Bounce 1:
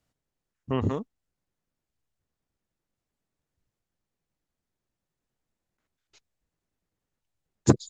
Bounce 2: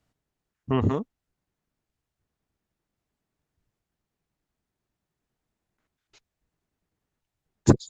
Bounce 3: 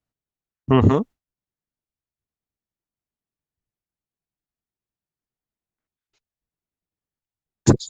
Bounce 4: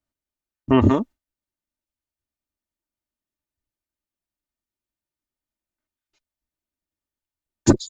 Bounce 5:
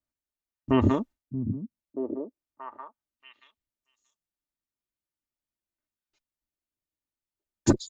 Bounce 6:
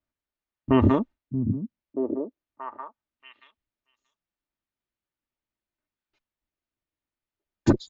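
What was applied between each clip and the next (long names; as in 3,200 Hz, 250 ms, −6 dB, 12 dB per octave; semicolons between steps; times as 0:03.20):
one-sided soft clipper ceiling −9 dBFS; high-shelf EQ 3,900 Hz −5.5 dB; notch filter 530 Hz, Q 12; level +4 dB
noise gate with hold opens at −42 dBFS; boost into a limiter +9.5 dB; level −1 dB
comb filter 3.3 ms, depth 53%; level −1 dB
echo through a band-pass that steps 630 ms, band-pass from 160 Hz, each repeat 1.4 octaves, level −2 dB; level −6 dB
low-pass filter 3,200 Hz 12 dB per octave; in parallel at +2.5 dB: brickwall limiter −15 dBFS, peak gain reduction 7 dB; on the sum: level −3 dB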